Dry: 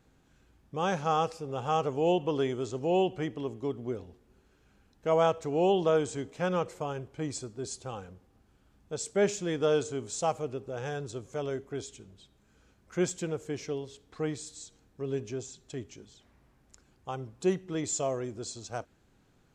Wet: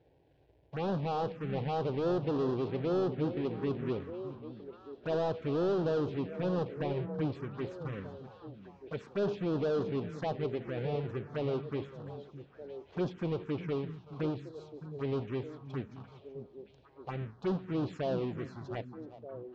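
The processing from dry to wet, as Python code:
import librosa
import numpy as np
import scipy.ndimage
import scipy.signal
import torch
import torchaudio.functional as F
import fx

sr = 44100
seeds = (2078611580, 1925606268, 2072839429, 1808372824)

p1 = fx.halfwave_hold(x, sr)
p2 = fx.peak_eq(p1, sr, hz=2300.0, db=-3.5, octaves=1.8)
p3 = fx.notch(p2, sr, hz=2100.0, q=27.0)
p4 = fx.over_compress(p3, sr, threshold_db=-28.0, ratio=-1.0)
p5 = p3 + F.gain(torch.from_numpy(p4), -2.0).numpy()
p6 = fx.bandpass_edges(p5, sr, low_hz=120.0, high_hz=3600.0)
p7 = 10.0 ** (-19.5 / 20.0) * np.tanh(p6 / 10.0 ** (-19.5 / 20.0))
p8 = fx.air_absorb(p7, sr, metres=220.0)
p9 = p8 + 10.0 ** (-16.5 / 20.0) * np.pad(p8, (int(379 * sr / 1000.0), 0))[:len(p8)]
p10 = fx.env_phaser(p9, sr, low_hz=200.0, high_hz=2200.0, full_db=-22.5)
p11 = p10 + fx.echo_stepped(p10, sr, ms=614, hz=170.0, octaves=1.4, feedback_pct=70, wet_db=-7, dry=0)
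y = F.gain(torch.from_numpy(p11), -5.0).numpy()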